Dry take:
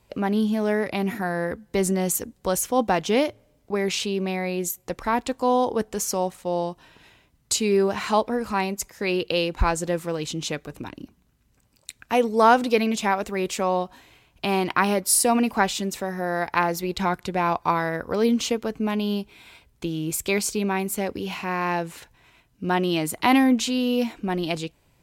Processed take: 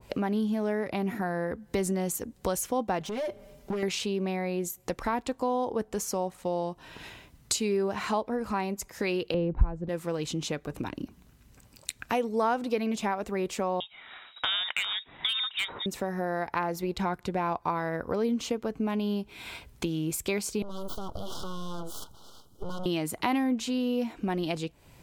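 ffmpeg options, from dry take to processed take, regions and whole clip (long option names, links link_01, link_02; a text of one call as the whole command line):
ffmpeg -i in.wav -filter_complex "[0:a]asettb=1/sr,asplit=3[link_01][link_02][link_03];[link_01]atrim=end=3.004[link_04];[link_02]atrim=start=3:end=3.83,asetpts=PTS-STARTPTS,afade=type=in:duration=0.004:curve=qsin,afade=type=out:start_time=0.826:duration=0.004:curve=qsin,aecho=1:1:5.1:0.9,atrim=end_sample=36603,acompressor=threshold=-26dB:ratio=8:attack=3.2:release=140:knee=1:detection=peak,volume=28.5dB,asoftclip=hard,volume=-28.5dB[link_05];[link_03]atrim=start=3.826[link_06];[link_04][link_05]acrossfade=duration=0.004:curve1=hsin:curve2=qsin[link_07];[link_07][link_06]acrossfade=duration=0.004:curve1=qsin:curve2=hsin,asettb=1/sr,asplit=3[link_08][link_09][link_10];[link_08]atrim=end=9.344[link_11];[link_09]atrim=start=9.34:end=9.89,asetpts=PTS-STARTPTS,afade=type=in:duration=0.004:curve=qsin,afade=type=out:start_time=0.546:duration=0.004:curve=qsin,lowpass=frequency=1000:poles=1,aemphasis=mode=reproduction:type=riaa[link_12];[link_10]atrim=start=9.886[link_13];[link_11][link_12]acrossfade=duration=0.004:curve1=hsin:curve2=qsin[link_14];[link_14][link_13]acrossfade=duration=0.004:curve1=qsin:curve2=hsin,asettb=1/sr,asplit=3[link_15][link_16][link_17];[link_15]atrim=end=13.804[link_18];[link_16]atrim=start=13.8:end=15.86,asetpts=PTS-STARTPTS,afade=type=in:duration=0.004:curve=qsin,afade=type=out:start_time=2.056:duration=0.004:curve=qsin,equalizer=frequency=1700:width=3.1:gain=9.5,lowpass=frequency=3300:width_type=q:width=0.5098,lowpass=frequency=3300:width_type=q:width=0.6013,lowpass=frequency=3300:width_type=q:width=0.9,lowpass=frequency=3300:width_type=q:width=2.563,afreqshift=-3900,asoftclip=type=hard:threshold=-10.5dB[link_19];[link_17]atrim=start=15.856[link_20];[link_18][link_19]acrossfade=duration=0.004:curve1=hsin:curve2=qsin[link_21];[link_21][link_20]acrossfade=duration=0.004:curve1=qsin:curve2=hsin,asettb=1/sr,asplit=3[link_22][link_23][link_24];[link_22]atrim=end=20.624[link_25];[link_23]atrim=start=20.62:end=22.86,asetpts=PTS-STARTPTS,afade=type=in:duration=0.004:curve=qsin,afade=type=out:start_time=2.236:duration=0.004:curve=qsin,acompressor=threshold=-32dB:ratio=5:attack=3.2:release=140:knee=1:detection=peak,aeval=exprs='abs(val(0))':channel_layout=same,asuperstop=centerf=2100:order=20:qfactor=1.4[link_26];[link_24]atrim=start=22.856[link_27];[link_25][link_26]acrossfade=duration=0.004:curve1=hsin:curve2=qsin[link_28];[link_28][link_27]acrossfade=duration=0.004:curve1=qsin:curve2=hsin,acompressor=threshold=-41dB:ratio=2.5,adynamicequalizer=threshold=0.00224:dfrequency=1700:dqfactor=0.7:tfrequency=1700:tqfactor=0.7:attack=5:release=100:ratio=0.375:range=3:mode=cutabove:tftype=highshelf,volume=8dB" out.wav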